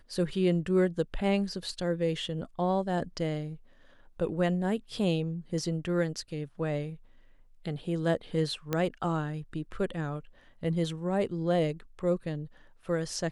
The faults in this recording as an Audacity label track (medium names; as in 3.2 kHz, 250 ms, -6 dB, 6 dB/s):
8.730000	8.730000	pop -15 dBFS